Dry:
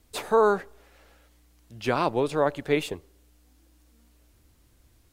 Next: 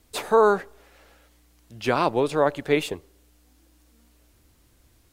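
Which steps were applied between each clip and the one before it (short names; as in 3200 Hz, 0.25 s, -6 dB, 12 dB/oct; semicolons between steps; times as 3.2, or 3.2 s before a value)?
low shelf 150 Hz -3.5 dB; gain +3 dB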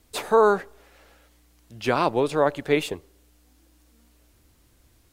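nothing audible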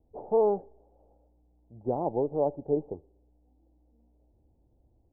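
Chebyshev low-pass 840 Hz, order 5; gain -5 dB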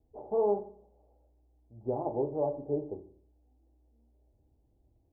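notch comb 180 Hz; on a send at -7 dB: reverb RT60 0.55 s, pre-delay 3 ms; on the sum: gain -3 dB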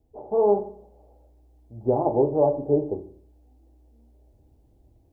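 AGC gain up to 6 dB; gain +4.5 dB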